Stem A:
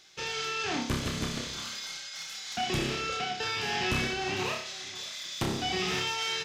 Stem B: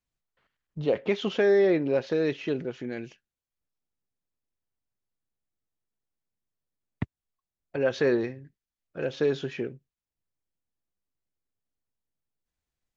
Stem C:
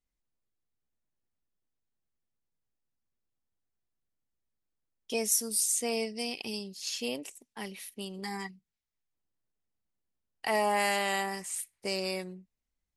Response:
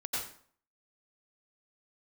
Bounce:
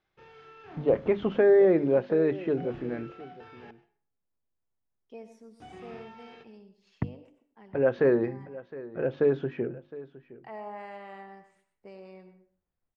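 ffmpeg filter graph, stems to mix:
-filter_complex "[0:a]volume=-14dB,asplit=3[link_01][link_02][link_03];[link_01]atrim=end=3.71,asetpts=PTS-STARTPTS,afade=type=out:start_time=3.706:duration=0.004:curve=hsin[link_04];[link_02]atrim=start=3.71:end=5.6,asetpts=PTS-STARTPTS,volume=0[link_05];[link_03]atrim=start=5.6,asetpts=PTS-STARTPTS,afade=type=in:duration=0.004:curve=hsin[link_06];[link_04][link_05][link_06]concat=n=3:v=0:a=1,asplit=2[link_07][link_08];[link_08]volume=-18dB[link_09];[1:a]bandreject=frequency=50:width_type=h:width=6,bandreject=frequency=100:width_type=h:width=6,bandreject=frequency=150:width_type=h:width=6,bandreject=frequency=200:width_type=h:width=6,bandreject=frequency=250:width_type=h:width=6,bandreject=frequency=300:width_type=h:width=6,bandreject=frequency=350:width_type=h:width=6,volume=2dB,asplit=2[link_10][link_11];[link_11]volume=-18dB[link_12];[2:a]volume=-13.5dB,asplit=2[link_13][link_14];[link_14]volume=-11dB[link_15];[3:a]atrim=start_sample=2205[link_16];[link_09][link_15]amix=inputs=2:normalize=0[link_17];[link_17][link_16]afir=irnorm=-1:irlink=0[link_18];[link_12]aecho=0:1:713:1[link_19];[link_07][link_10][link_13][link_18][link_19]amix=inputs=5:normalize=0,lowpass=1400"

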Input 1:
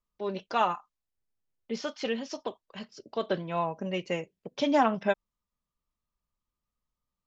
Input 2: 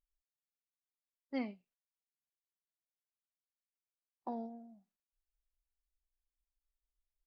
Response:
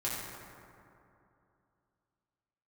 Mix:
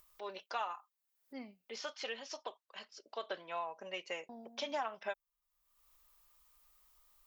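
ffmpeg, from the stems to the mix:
-filter_complex "[0:a]highpass=700,acompressor=threshold=-33dB:ratio=3,volume=-3.5dB[link_01];[1:a]aemphasis=mode=production:type=50fm,volume=-9.5dB,asplit=3[link_02][link_03][link_04];[link_02]atrim=end=1.87,asetpts=PTS-STARTPTS,afade=type=out:start_time=1.866:duration=0.004:curve=hsin[link_05];[link_03]atrim=start=1.87:end=4.29,asetpts=PTS-STARTPTS,volume=0[link_06];[link_04]atrim=start=4.29,asetpts=PTS-STARTPTS,afade=type=in:duration=0.004:curve=hsin[link_07];[link_05][link_06][link_07]concat=n=3:v=0:a=1[link_08];[link_01][link_08]amix=inputs=2:normalize=0,acompressor=mode=upward:threshold=-50dB:ratio=2.5"

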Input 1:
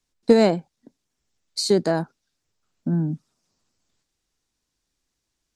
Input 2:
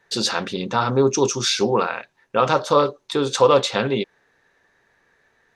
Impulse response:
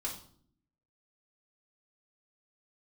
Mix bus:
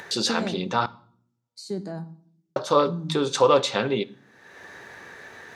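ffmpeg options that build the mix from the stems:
-filter_complex "[0:a]equalizer=frequency=150:width=1:gain=11,volume=-19dB,asplit=2[link_01][link_02];[link_02]volume=-6.5dB[link_03];[1:a]acompressor=mode=upward:threshold=-22dB:ratio=2.5,volume=-4dB,asplit=3[link_04][link_05][link_06];[link_04]atrim=end=0.86,asetpts=PTS-STARTPTS,afade=type=out:start_time=0.856:duration=0.004:curve=hsin[link_07];[link_05]atrim=start=0.86:end=2.56,asetpts=PTS-STARTPTS,volume=0[link_08];[link_06]atrim=start=2.56,asetpts=PTS-STARTPTS,afade=type=in:duration=0.004:curve=hsin[link_09];[link_07][link_08][link_09]concat=n=3:v=0:a=1,asplit=2[link_10][link_11];[link_11]volume=-14.5dB[link_12];[2:a]atrim=start_sample=2205[link_13];[link_03][link_12]amix=inputs=2:normalize=0[link_14];[link_14][link_13]afir=irnorm=-1:irlink=0[link_15];[link_01][link_10][link_15]amix=inputs=3:normalize=0,highpass=82"

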